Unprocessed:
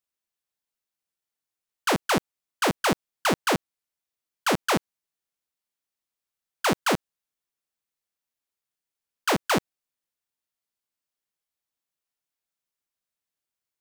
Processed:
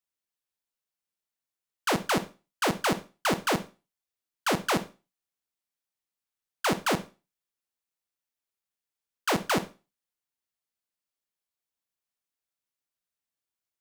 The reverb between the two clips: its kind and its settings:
four-comb reverb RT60 0.3 s, combs from 33 ms, DRR 11.5 dB
level −3 dB

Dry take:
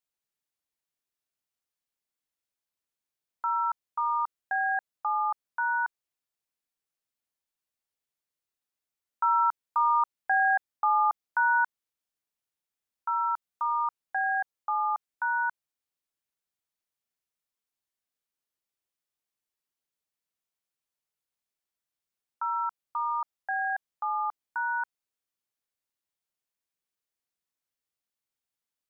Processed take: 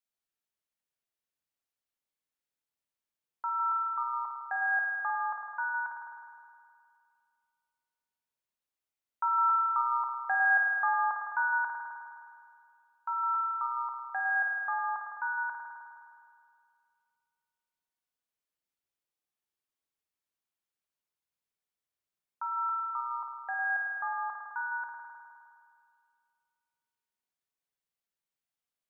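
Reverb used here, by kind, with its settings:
spring reverb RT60 2.3 s, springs 51 ms, chirp 40 ms, DRR 1 dB
level −4.5 dB

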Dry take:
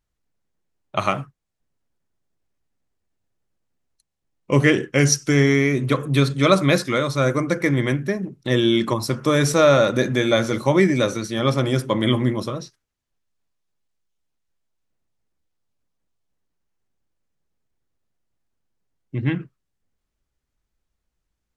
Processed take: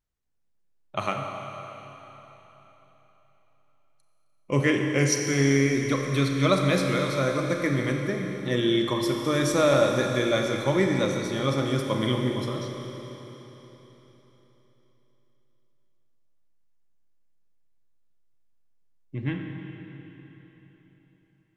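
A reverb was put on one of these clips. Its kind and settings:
four-comb reverb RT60 3.9 s, combs from 29 ms, DRR 2.5 dB
level −7 dB

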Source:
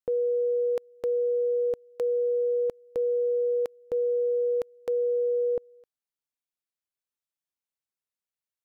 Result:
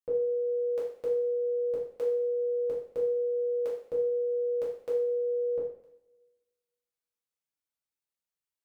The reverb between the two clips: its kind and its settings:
coupled-rooms reverb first 0.58 s, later 1.6 s, from −23 dB, DRR −6.5 dB
level −9 dB

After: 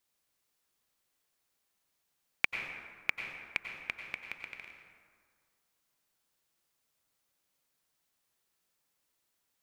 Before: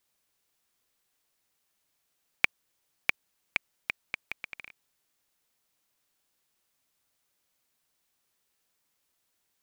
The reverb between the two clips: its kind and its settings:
dense smooth reverb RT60 1.9 s, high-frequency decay 0.5×, pre-delay 80 ms, DRR 3.5 dB
level −4 dB

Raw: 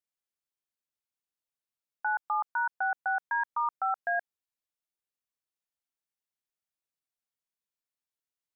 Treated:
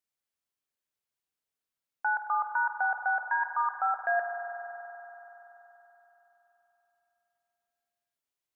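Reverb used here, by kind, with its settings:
spring reverb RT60 3.9 s, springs 47 ms, chirp 50 ms, DRR 4 dB
level +1.5 dB

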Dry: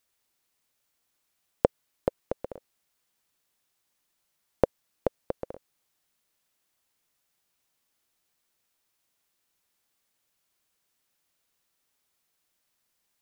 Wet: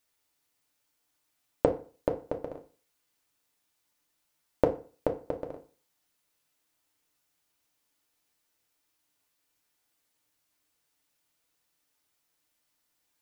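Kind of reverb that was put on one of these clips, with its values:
feedback delay network reverb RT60 0.39 s, low-frequency decay 1×, high-frequency decay 0.8×, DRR 2.5 dB
level −2 dB

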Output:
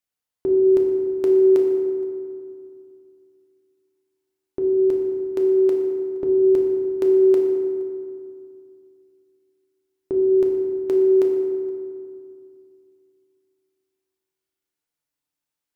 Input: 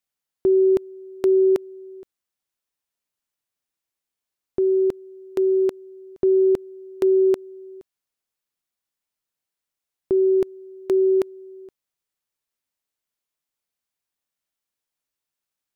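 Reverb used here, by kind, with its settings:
feedback delay network reverb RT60 2.3 s, low-frequency decay 1.35×, high-frequency decay 0.5×, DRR 0 dB
level −3 dB

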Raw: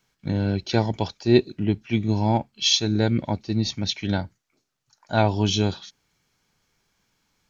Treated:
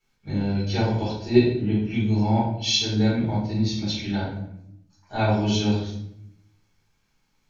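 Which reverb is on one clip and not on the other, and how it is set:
rectangular room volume 180 cubic metres, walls mixed, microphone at 4.1 metres
level −14 dB

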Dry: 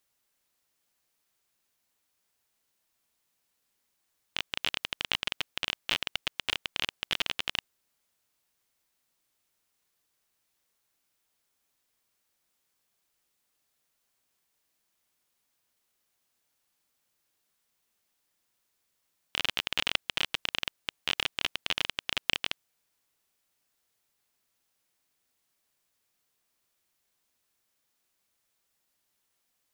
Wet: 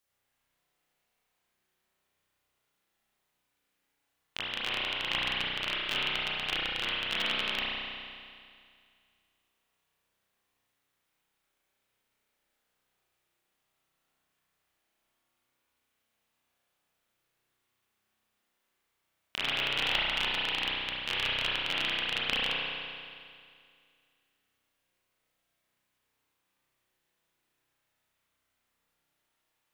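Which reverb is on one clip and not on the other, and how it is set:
spring reverb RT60 2.2 s, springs 32 ms, chirp 45 ms, DRR −8 dB
level −5.5 dB

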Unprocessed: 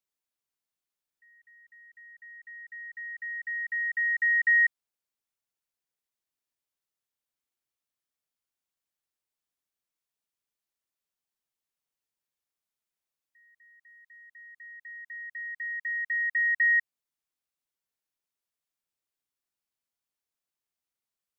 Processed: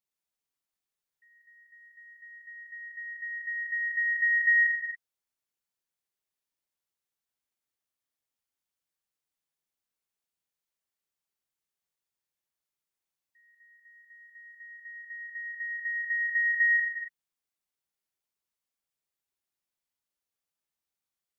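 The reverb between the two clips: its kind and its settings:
reverb whose tail is shaped and stops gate 300 ms flat, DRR 1 dB
level −3 dB

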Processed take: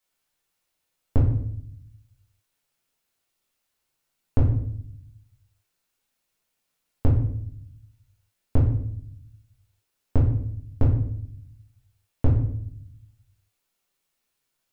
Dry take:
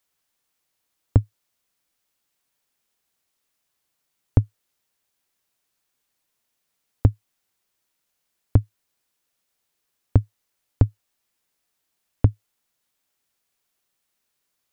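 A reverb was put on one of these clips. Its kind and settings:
rectangular room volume 120 cubic metres, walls mixed, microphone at 1.5 metres
level −6.5 dB

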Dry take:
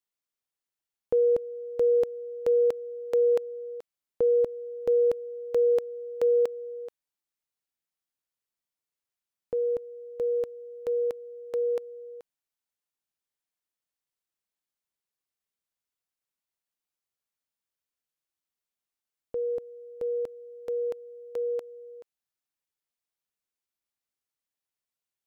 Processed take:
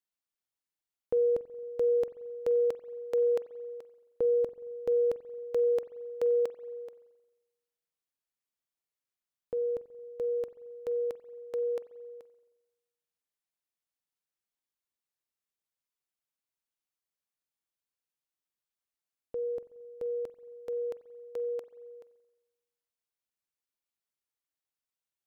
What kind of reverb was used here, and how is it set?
spring reverb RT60 1.1 s, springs 44 ms, chirp 50 ms, DRR 14.5 dB
level −4 dB

